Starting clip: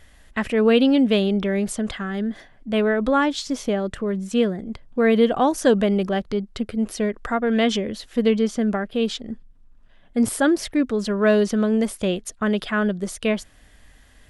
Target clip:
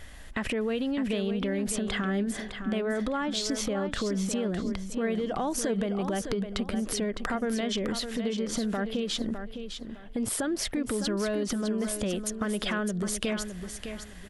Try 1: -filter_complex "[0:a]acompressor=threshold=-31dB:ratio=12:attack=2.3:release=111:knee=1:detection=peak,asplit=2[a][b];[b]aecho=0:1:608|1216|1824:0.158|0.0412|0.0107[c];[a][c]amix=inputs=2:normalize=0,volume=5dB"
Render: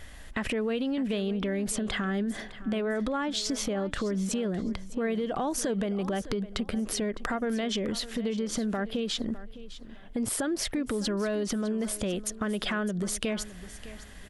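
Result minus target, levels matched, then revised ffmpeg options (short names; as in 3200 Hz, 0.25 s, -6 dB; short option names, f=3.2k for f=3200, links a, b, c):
echo-to-direct -7.5 dB
-filter_complex "[0:a]acompressor=threshold=-31dB:ratio=12:attack=2.3:release=111:knee=1:detection=peak,asplit=2[a][b];[b]aecho=0:1:608|1216|1824:0.376|0.0977|0.0254[c];[a][c]amix=inputs=2:normalize=0,volume=5dB"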